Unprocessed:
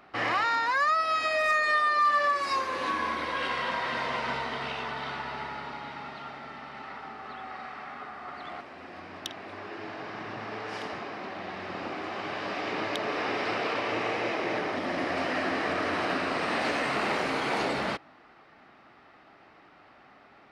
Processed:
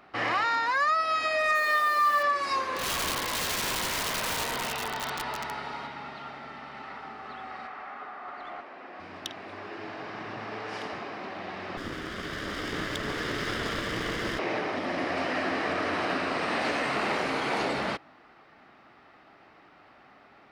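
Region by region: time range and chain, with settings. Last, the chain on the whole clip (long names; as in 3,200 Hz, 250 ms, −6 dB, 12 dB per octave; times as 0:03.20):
0:01.55–0:02.23: high-pass filter 230 Hz + bit-depth reduction 8 bits, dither triangular
0:02.76–0:05.87: high-shelf EQ 4,600 Hz +8 dB + delay with a band-pass on its return 92 ms, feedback 66%, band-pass 670 Hz, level −5 dB + wrap-around overflow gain 24.5 dB
0:07.67–0:09.00: high-pass filter 200 Hz + mid-hump overdrive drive 9 dB, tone 1,300 Hz, clips at −28 dBFS
0:11.77–0:14.39: lower of the sound and its delayed copy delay 0.58 ms + bass and treble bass +4 dB, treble +2 dB
whole clip: no processing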